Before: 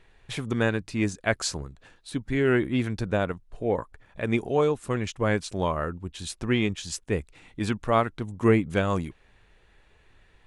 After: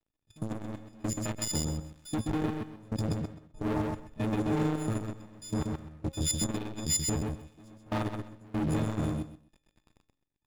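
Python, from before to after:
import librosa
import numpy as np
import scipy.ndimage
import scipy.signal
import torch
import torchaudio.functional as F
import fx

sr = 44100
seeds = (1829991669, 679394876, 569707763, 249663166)

p1 = fx.freq_snap(x, sr, grid_st=6)
p2 = fx.curve_eq(p1, sr, hz=(320.0, 480.0, 820.0, 1800.0, 5200.0), db=(0, -17, -13, -26, -18))
p3 = fx.over_compress(p2, sr, threshold_db=-28.0, ratio=-0.5)
p4 = p2 + (p3 * librosa.db_to_amplitude(-1.0))
p5 = fx.leveller(p4, sr, passes=5)
p6 = fx.level_steps(p5, sr, step_db=18)
p7 = fx.step_gate(p6, sr, bpm=72, pattern='..x..xxxxxxx', floor_db=-24.0, edge_ms=4.5)
p8 = fx.comb_fb(p7, sr, f0_hz=270.0, decay_s=0.42, harmonics='all', damping=0.0, mix_pct=50)
p9 = fx.echo_feedback(p8, sr, ms=129, feedback_pct=18, wet_db=-4.0)
p10 = fx.transformer_sat(p9, sr, knee_hz=150.0)
y = p10 * librosa.db_to_amplitude(-4.0)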